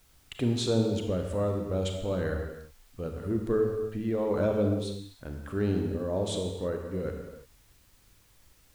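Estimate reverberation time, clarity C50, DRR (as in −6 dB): non-exponential decay, 4.0 dB, 3.0 dB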